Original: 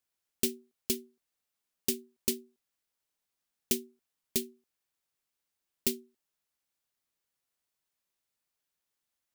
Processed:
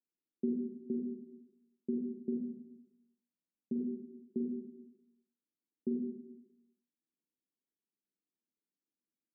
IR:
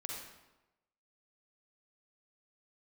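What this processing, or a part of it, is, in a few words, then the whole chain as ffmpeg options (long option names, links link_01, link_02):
next room: -filter_complex "[0:a]highpass=frequency=210:width=0.5412,highpass=frequency=210:width=1.3066,lowpass=frequency=320:width=0.5412,lowpass=frequency=320:width=1.3066[link_01];[1:a]atrim=start_sample=2205[link_02];[link_01][link_02]afir=irnorm=-1:irlink=0,asplit=3[link_03][link_04][link_05];[link_03]afade=type=out:start_time=2.36:duration=0.02[link_06];[link_04]aecho=1:1:1.4:0.53,afade=type=in:start_time=2.36:duration=0.02,afade=type=out:start_time=3.79:duration=0.02[link_07];[link_05]afade=type=in:start_time=3.79:duration=0.02[link_08];[link_06][link_07][link_08]amix=inputs=3:normalize=0,volume=7.5dB"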